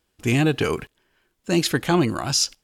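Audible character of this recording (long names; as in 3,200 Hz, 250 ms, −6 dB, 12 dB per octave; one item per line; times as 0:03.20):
background noise floor −73 dBFS
spectral slope −4.5 dB per octave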